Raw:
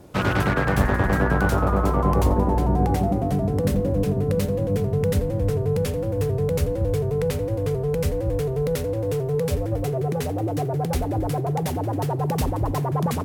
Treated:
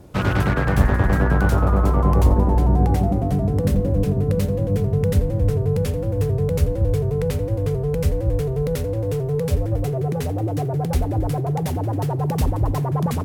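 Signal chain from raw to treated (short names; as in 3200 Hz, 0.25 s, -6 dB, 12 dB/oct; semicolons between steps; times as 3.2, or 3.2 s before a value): low shelf 130 Hz +8.5 dB; gain -1 dB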